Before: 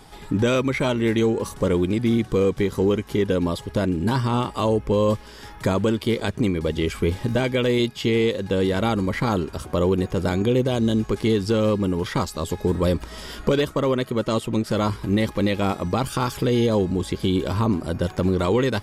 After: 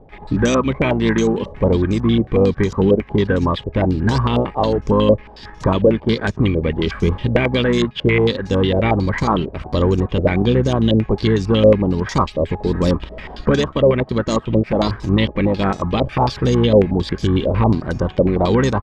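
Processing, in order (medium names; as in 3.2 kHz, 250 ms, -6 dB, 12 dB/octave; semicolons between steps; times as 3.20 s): harmony voices -12 st -8 dB; bass shelf 240 Hz +4.5 dB; band-stop 1.4 kHz, Q 9.9; in parallel at -5 dB: crossover distortion -36.5 dBFS; on the sum: step-sequenced low-pass 11 Hz 570–6200 Hz; trim -2.5 dB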